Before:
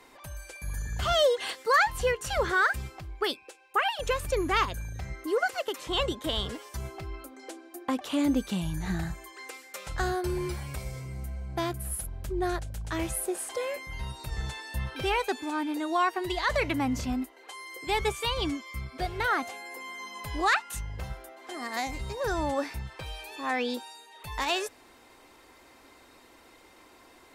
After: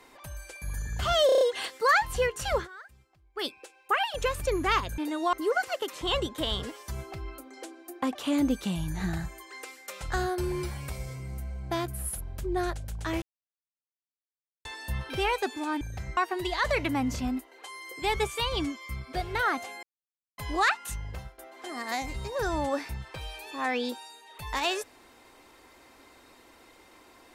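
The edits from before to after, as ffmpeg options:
-filter_complex "[0:a]asplit=17[a][b][c][d][e][f][g][h][i][j][k][l][m][n][o][p][q];[a]atrim=end=1.292[r];[b]atrim=start=1.258:end=1.292[s];[c]atrim=start=1.258:end=1.292[t];[d]atrim=start=1.258:end=1.292[u];[e]atrim=start=1.258:end=1.292[v];[f]atrim=start=1.258:end=2.53,asetpts=PTS-STARTPTS,afade=t=out:st=1.152:d=0.12:silence=0.0749894[w];[g]atrim=start=2.53:end=3.19,asetpts=PTS-STARTPTS,volume=-22.5dB[x];[h]atrim=start=3.19:end=4.832,asetpts=PTS-STARTPTS,afade=t=in:d=0.12:silence=0.0749894[y];[i]atrim=start=15.668:end=16.022[z];[j]atrim=start=5.188:end=13.08,asetpts=PTS-STARTPTS,afade=t=out:st=7.888:d=0.004:c=hsin[aa];[k]atrim=start=13.08:end=14.51,asetpts=PTS-STARTPTS,volume=0[ab];[l]atrim=start=14.51:end=15.672,asetpts=PTS-STARTPTS,afade=t=in:d=0.004:c=hsin[ac];[m]atrim=start=4.828:end=5.192[ad];[n]atrim=start=16.018:end=19.68,asetpts=PTS-STARTPTS,afade=t=out:st=3.658:d=0.004:c=hsin[ae];[o]atrim=start=19.68:end=20.23,asetpts=PTS-STARTPTS,volume=0[af];[p]atrim=start=20.23:end=21.23,asetpts=PTS-STARTPTS,afade=t=in:d=0.004:c=hsin,afade=t=out:st=0.71:d=0.29:silence=0.16788[ag];[q]atrim=start=21.23,asetpts=PTS-STARTPTS,afade=t=in:d=0.004:c=hsin:silence=0.16788[ah];[r][s]acrossfade=d=0.004:c1=hsin:c2=hsin[ai];[ai][t]acrossfade=d=0.004:c1=hsin:c2=hsin[aj];[aj][u]acrossfade=d=0.004:c1=hsin:c2=hsin[ak];[ak][v]acrossfade=d=0.004:c1=hsin:c2=hsin[al];[w][x][y]concat=n=3:v=0:a=1[am];[al][am]acrossfade=d=0.004:c1=hsin:c2=hsin[an];[an][z]acrossfade=d=0.004:c1=hsin:c2=hsin[ao];[aa][ab][ac]concat=n=3:v=0:a=1[ap];[ao][ap]acrossfade=d=0.004:c1=hsin:c2=hsin[aq];[aq][ad]acrossfade=d=0.004:c1=hsin:c2=hsin[ar];[ae][af][ag][ah]concat=n=4:v=0:a=1[as];[ar][as]acrossfade=d=0.004:c1=hsin:c2=hsin"

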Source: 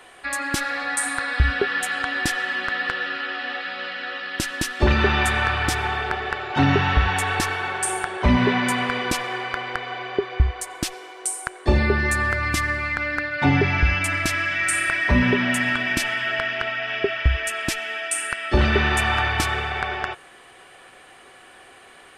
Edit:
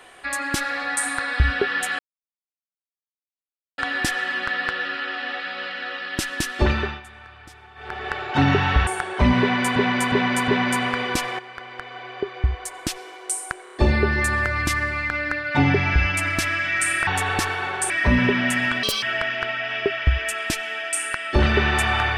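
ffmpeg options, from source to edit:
-filter_complex "[0:a]asplit=16[a][b][c][d][e][f][g][h][i][j][k][l][m][n][o][p];[a]atrim=end=1.99,asetpts=PTS-STARTPTS,afade=t=out:st=1.986:d=0.004:c=hsin,apad=pad_dur=1.79[q];[b]atrim=start=1.99:end=5.22,asetpts=PTS-STARTPTS,afade=t=in:d=0.004:c=hsin,afade=t=out:st=2.81:d=0.42:silence=0.0749894[r];[c]atrim=start=5.22:end=5.96,asetpts=PTS-STARTPTS,volume=-22.5dB[s];[d]atrim=start=5.96:end=7.082,asetpts=PTS-STARTPTS,afade=t=in:d=0.42:silence=0.0749894[t];[e]atrim=start=7.908:end=8.802[u];[f]atrim=start=8.438:end=8.802[v];[g]atrim=start=8.438:end=8.802[w];[h]atrim=start=8.438:end=9.35,asetpts=PTS-STARTPTS,afade=t=out:st=0.908:d=0.004:c=hsin:silence=0.237137[x];[i]atrim=start=9.35:end=11.632,asetpts=PTS-STARTPTS,afade=t=in:d=1.64:silence=0.237137[y];[j]atrim=start=11.598:end=11.632[z];[k]atrim=start=11.598:end=11.632[aa];[l]atrim=start=11.598:end=14.942[ab];[m]atrim=start=7.078:end=7.912[ac];[n]atrim=start=14.938:end=15.874[ad];[o]atrim=start=15.87:end=16.21,asetpts=PTS-STARTPTS,asetrate=76734,aresample=44100,atrim=end_sample=8617,asetpts=PTS-STARTPTS[ae];[p]atrim=start=16.206[af];[q][r][s][t]concat=n=4:v=0:a=1[ag];[ag][u]acrossfade=d=0.004:c1=hsin:c2=hsin[ah];[ah][v]acrossfade=d=0.004:c1=hsin:c2=hsin[ai];[ai][w]acrossfade=d=0.004:c1=hsin:c2=hsin[aj];[x][y]concat=n=2:v=0:a=1[ak];[aj][ak]acrossfade=d=0.004:c1=hsin:c2=hsin[al];[al][z]acrossfade=d=0.004:c1=hsin:c2=hsin[am];[am][aa]acrossfade=d=0.004:c1=hsin:c2=hsin[an];[an][ab]acrossfade=d=0.004:c1=hsin:c2=hsin[ao];[ao][ac]acrossfade=d=0.004:c1=hsin:c2=hsin[ap];[ap][ad]acrossfade=d=0.004:c1=hsin:c2=hsin[aq];[aq][ae]acrossfade=d=0.004:c1=hsin:c2=hsin[ar];[ar][af]acrossfade=d=0.004:c1=hsin:c2=hsin"

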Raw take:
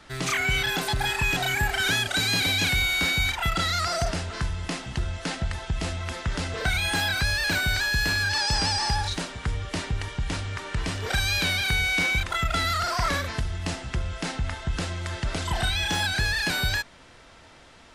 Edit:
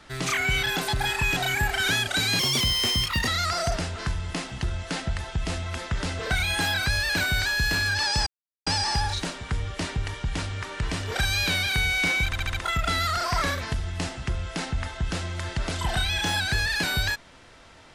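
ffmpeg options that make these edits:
-filter_complex "[0:a]asplit=8[a][b][c][d][e][f][g][h];[a]atrim=end=2.394[i];[b]atrim=start=2.39:end=3.62,asetpts=PTS-STARTPTS,asetrate=61299,aresample=44100[j];[c]atrim=start=3.616:end=8.61,asetpts=PTS-STARTPTS,afade=t=out:st=4.99:d=0.004:c=hsin,apad=pad_dur=0.4[k];[d]atrim=start=8.61:end=12.272,asetpts=PTS-STARTPTS,afade=t=in:d=0.004:c=hsin[l];[e]atrim=start=12.198:end=12.272[m];[f]atrim=start=12.198:end=12.272[n];[g]atrim=start=12.198:end=12.272[o];[h]atrim=start=12.198[p];[i][j]acrossfade=d=0.004:c1=hsin:c2=hsin[q];[k][l]concat=n=2:v=0:a=1[r];[q][r]acrossfade=d=0.004:c1=hsin:c2=hsin[s];[s][m]acrossfade=d=0.004:c1=hsin:c2=hsin[t];[t][n]acrossfade=d=0.004:c1=hsin:c2=hsin[u];[u][o]acrossfade=d=0.004:c1=hsin:c2=hsin[v];[v][p]acrossfade=d=0.004:c1=hsin:c2=hsin"

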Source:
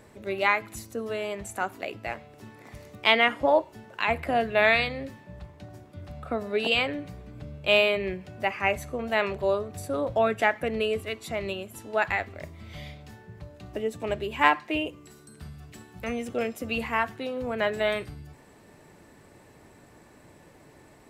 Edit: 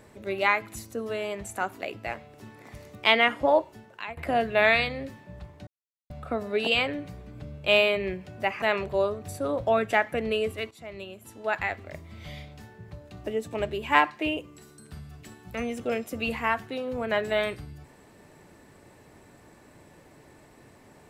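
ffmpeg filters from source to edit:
-filter_complex "[0:a]asplit=6[a][b][c][d][e][f];[a]atrim=end=4.17,asetpts=PTS-STARTPTS,afade=t=out:st=3.66:d=0.51:silence=0.1[g];[b]atrim=start=4.17:end=5.67,asetpts=PTS-STARTPTS,afade=t=in:d=0.004:c=hsin:silence=0.1,afade=t=out:st=1.496:d=0.004:c=hsin[h];[c]atrim=start=5.67:end=6.1,asetpts=PTS-STARTPTS,volume=0[i];[d]atrim=start=6.1:end=8.622,asetpts=PTS-STARTPTS,afade=t=in:d=0.004:c=hsin[j];[e]atrim=start=9.108:end=11.2,asetpts=PTS-STARTPTS,afade=t=out:st=2.088:d=0.004:c=hsin:silence=0.199526[k];[f]atrim=start=11.2,asetpts=PTS-STARTPTS,afade=t=in:d=1.76:c=qsin:silence=0.199526[l];[g][h][i][j]concat=n=4:v=0:a=1[m];[k][l]concat=n=2:v=0:a=1[n];[m][n]acrossfade=d=0.004:c1=hsin:c2=hsin"

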